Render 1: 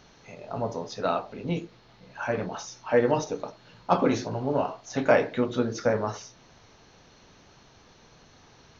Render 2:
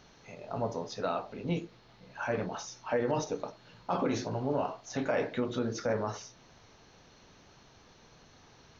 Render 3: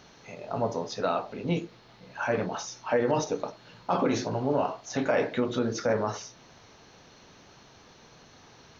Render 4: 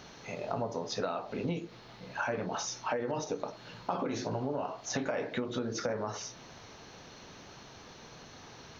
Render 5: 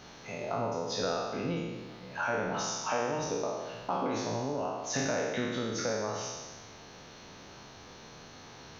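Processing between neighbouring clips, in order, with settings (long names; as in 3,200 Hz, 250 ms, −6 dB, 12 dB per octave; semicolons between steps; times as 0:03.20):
brickwall limiter −17.5 dBFS, peak gain reduction 10.5 dB; level −3 dB
low-shelf EQ 67 Hz −9 dB; level +5 dB
downward compressor 12 to 1, threshold −33 dBFS, peak gain reduction 13 dB; level +3 dB
peak hold with a decay on every bin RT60 1.45 s; level −2 dB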